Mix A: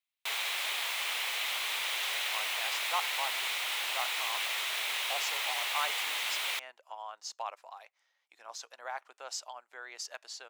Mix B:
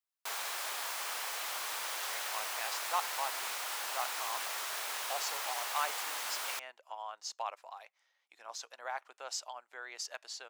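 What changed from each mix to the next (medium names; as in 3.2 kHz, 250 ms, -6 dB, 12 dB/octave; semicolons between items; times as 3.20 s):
background: add high-order bell 2.8 kHz -10 dB 1.2 oct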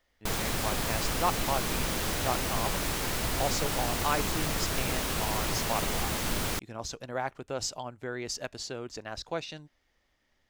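speech: entry -1.70 s; master: remove ladder high-pass 630 Hz, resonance 20%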